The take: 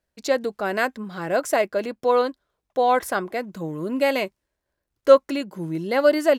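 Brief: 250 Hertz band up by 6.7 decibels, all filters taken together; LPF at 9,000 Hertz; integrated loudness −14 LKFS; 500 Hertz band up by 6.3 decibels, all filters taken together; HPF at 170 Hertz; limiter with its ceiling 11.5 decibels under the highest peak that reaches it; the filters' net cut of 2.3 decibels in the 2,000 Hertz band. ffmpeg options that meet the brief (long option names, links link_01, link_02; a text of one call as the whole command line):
ffmpeg -i in.wav -af "highpass=170,lowpass=9000,equalizer=frequency=250:width_type=o:gain=7,equalizer=frequency=500:width_type=o:gain=6,equalizer=frequency=2000:width_type=o:gain=-3.5,volume=6dB,alimiter=limit=-2dB:level=0:latency=1" out.wav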